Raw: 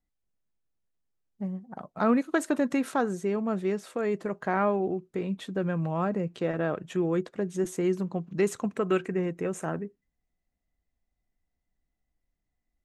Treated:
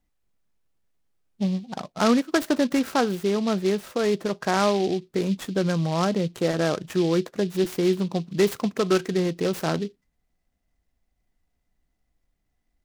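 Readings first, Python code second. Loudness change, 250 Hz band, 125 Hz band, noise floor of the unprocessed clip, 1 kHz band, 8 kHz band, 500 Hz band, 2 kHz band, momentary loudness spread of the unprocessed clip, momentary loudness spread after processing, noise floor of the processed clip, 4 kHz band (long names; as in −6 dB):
+5.0 dB, +5.0 dB, +5.5 dB, −83 dBFS, +4.0 dB, +7.5 dB, +5.0 dB, +4.5 dB, 8 LU, 5 LU, −76 dBFS, +15.5 dB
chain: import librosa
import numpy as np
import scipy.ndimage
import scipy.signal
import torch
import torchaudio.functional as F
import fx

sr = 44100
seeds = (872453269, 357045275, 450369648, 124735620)

p1 = fx.rider(x, sr, range_db=10, speed_s=0.5)
p2 = x + (p1 * 10.0 ** (-2.5 / 20.0))
y = fx.noise_mod_delay(p2, sr, seeds[0], noise_hz=3500.0, depth_ms=0.049)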